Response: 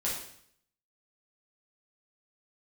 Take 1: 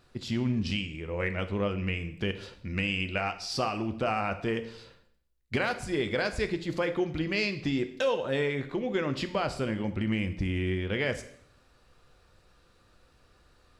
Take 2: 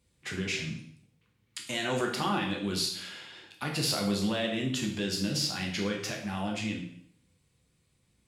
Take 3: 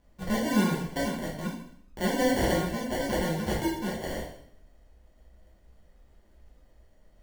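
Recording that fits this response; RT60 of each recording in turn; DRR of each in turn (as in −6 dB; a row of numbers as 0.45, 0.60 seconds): 3; 0.65, 0.65, 0.65 seconds; 8.0, −0.5, −6.5 decibels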